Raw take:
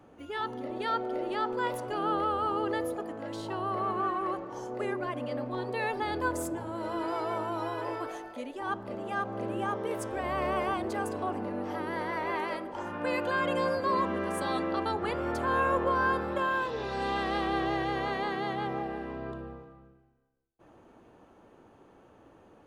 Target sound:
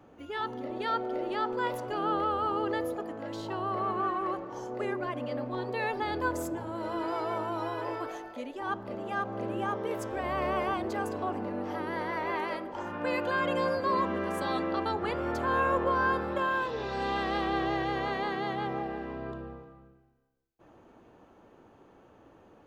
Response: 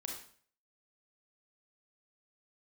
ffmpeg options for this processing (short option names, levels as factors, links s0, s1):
-af "equalizer=f=9200:w=4.2:g=-11.5"